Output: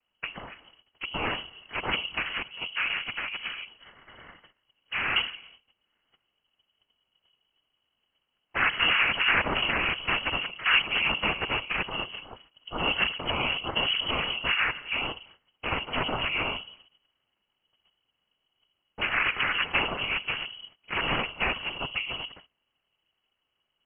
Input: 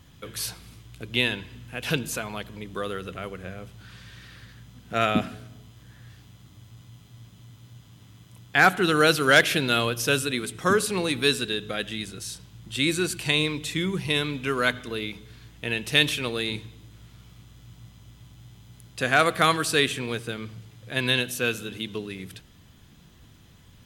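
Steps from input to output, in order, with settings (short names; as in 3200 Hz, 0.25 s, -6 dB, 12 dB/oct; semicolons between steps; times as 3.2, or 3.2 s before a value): spectral noise reduction 8 dB; notches 60/120/180/240/300/360 Hz; gate -54 dBFS, range -19 dB; low shelf 130 Hz -8 dB; in parallel at +2 dB: compressor, threshold -37 dBFS, peak gain reduction 23 dB; on the sum: limiter -13 dBFS, peak gain reduction 8.5 dB; noise vocoder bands 6; inverted band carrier 3100 Hz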